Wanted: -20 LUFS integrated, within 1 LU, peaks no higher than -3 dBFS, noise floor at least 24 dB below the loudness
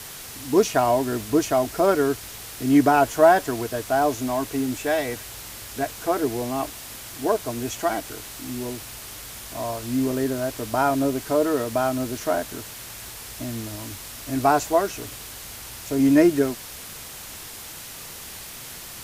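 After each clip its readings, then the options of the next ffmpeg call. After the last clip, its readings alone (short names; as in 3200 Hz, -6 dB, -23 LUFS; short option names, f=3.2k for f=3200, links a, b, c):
noise floor -39 dBFS; noise floor target -47 dBFS; loudness -23.0 LUFS; peak -3.5 dBFS; loudness target -20.0 LUFS
-> -af "afftdn=nr=8:nf=-39"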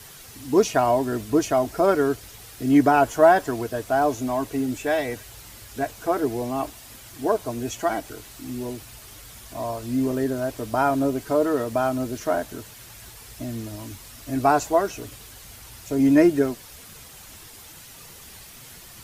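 noise floor -45 dBFS; noise floor target -47 dBFS
-> -af "afftdn=nr=6:nf=-45"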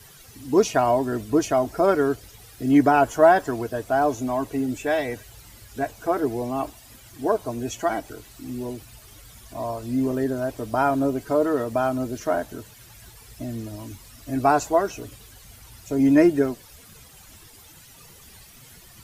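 noise floor -49 dBFS; loudness -23.0 LUFS; peak -3.5 dBFS; loudness target -20.0 LUFS
-> -af "volume=3dB,alimiter=limit=-3dB:level=0:latency=1"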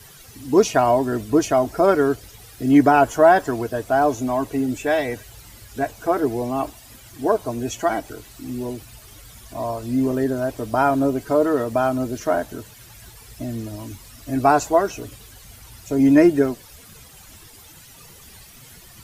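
loudness -20.0 LUFS; peak -3.0 dBFS; noise floor -46 dBFS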